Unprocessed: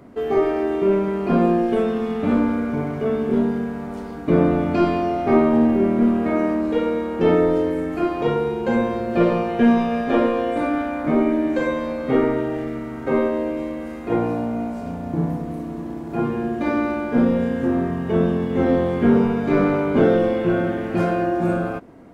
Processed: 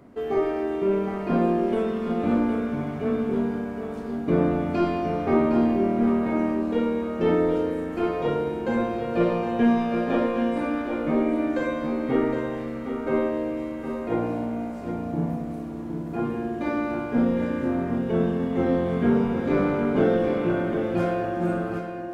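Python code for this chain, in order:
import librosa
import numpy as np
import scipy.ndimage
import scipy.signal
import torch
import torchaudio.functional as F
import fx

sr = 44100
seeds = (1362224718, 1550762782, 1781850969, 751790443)

y = x + 10.0 ** (-7.5 / 20.0) * np.pad(x, (int(763 * sr / 1000.0), 0))[:len(x)]
y = y * librosa.db_to_amplitude(-5.0)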